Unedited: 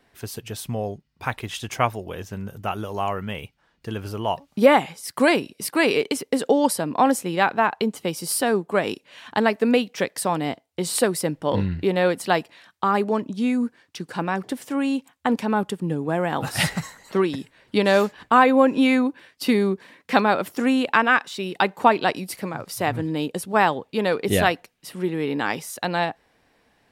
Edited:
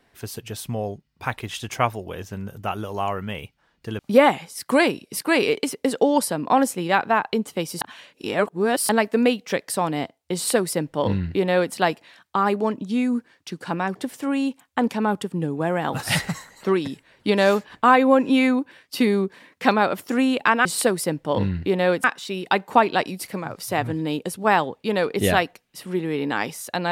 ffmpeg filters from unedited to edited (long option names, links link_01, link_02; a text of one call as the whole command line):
ffmpeg -i in.wav -filter_complex "[0:a]asplit=6[link_01][link_02][link_03][link_04][link_05][link_06];[link_01]atrim=end=3.992[link_07];[link_02]atrim=start=4.468:end=8.292[link_08];[link_03]atrim=start=8.288:end=9.372,asetpts=PTS-STARTPTS,areverse[link_09];[link_04]atrim=start=9.368:end=21.132[link_10];[link_05]atrim=start=10.818:end=12.212[link_11];[link_06]atrim=start=21.128[link_12];[link_07][link_08]acrossfade=duration=0.004:curve1=hsin:curve2=hsin[link_13];[link_13][link_09]acrossfade=duration=0.004:curve1=hsin:curve2=hsin[link_14];[link_14][link_10]acrossfade=duration=0.004:curve1=hsin:curve2=hsin[link_15];[link_15][link_11]acrossfade=duration=0.004:curve1=hsin:curve2=hsin[link_16];[link_16][link_12]acrossfade=duration=0.004:curve1=hsin:curve2=hsin" out.wav